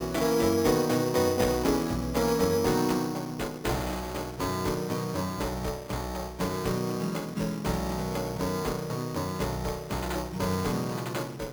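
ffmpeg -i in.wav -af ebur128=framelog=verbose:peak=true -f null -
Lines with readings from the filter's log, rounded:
Integrated loudness:
  I:         -29.2 LUFS
  Threshold: -39.2 LUFS
Loudness range:
  LRA:         5.5 LU
  Threshold: -49.8 LUFS
  LRA low:   -31.7 LUFS
  LRA high:  -26.2 LUFS
True peak:
  Peak:      -10.8 dBFS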